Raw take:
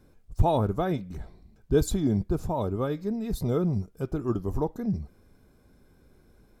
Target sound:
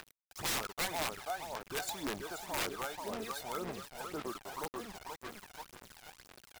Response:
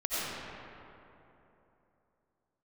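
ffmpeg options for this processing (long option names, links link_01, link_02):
-filter_complex "[0:a]highpass=980,highshelf=frequency=5300:gain=-11.5,acompressor=mode=upward:threshold=-41dB:ratio=2.5,asplit=2[link_01][link_02];[link_02]adelay=483,lowpass=frequency=4300:poles=1,volume=-6.5dB,asplit=2[link_03][link_04];[link_04]adelay=483,lowpass=frequency=4300:poles=1,volume=0.51,asplit=2[link_05][link_06];[link_06]adelay=483,lowpass=frequency=4300:poles=1,volume=0.51,asplit=2[link_07][link_08];[link_08]adelay=483,lowpass=frequency=4300:poles=1,volume=0.51,asplit=2[link_09][link_10];[link_10]adelay=483,lowpass=frequency=4300:poles=1,volume=0.51,asplit=2[link_11][link_12];[link_12]adelay=483,lowpass=frequency=4300:poles=1,volume=0.51[link_13];[link_01][link_03][link_05][link_07][link_09][link_11][link_13]amix=inputs=7:normalize=0,acrusher=bits=7:mix=0:aa=0.000001,aphaser=in_gain=1:out_gain=1:delay=1.4:decay=0.61:speed=1.9:type=sinusoidal,aeval=exprs='(mod(26.6*val(0)+1,2)-1)/26.6':channel_layout=same"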